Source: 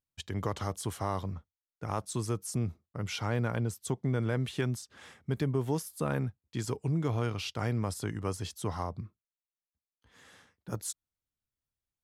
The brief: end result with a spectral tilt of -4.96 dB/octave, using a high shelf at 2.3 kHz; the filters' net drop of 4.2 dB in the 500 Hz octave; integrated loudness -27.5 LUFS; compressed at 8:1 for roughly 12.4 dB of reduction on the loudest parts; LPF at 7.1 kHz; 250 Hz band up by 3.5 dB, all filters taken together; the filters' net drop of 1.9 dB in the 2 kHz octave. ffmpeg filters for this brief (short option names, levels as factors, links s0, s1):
-af "lowpass=7100,equalizer=f=250:t=o:g=6.5,equalizer=f=500:t=o:g=-8,equalizer=f=2000:t=o:g=-4,highshelf=f=2300:g=3.5,acompressor=threshold=0.0126:ratio=8,volume=6.31"